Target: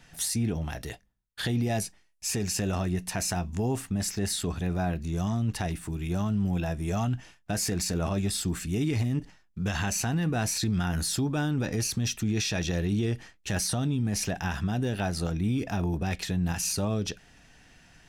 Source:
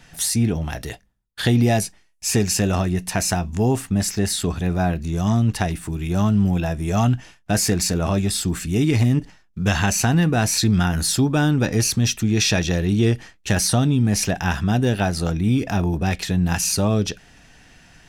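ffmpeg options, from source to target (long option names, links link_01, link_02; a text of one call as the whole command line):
ffmpeg -i in.wav -af "alimiter=limit=-13.5dB:level=0:latency=1:release=45,volume=-6.5dB" out.wav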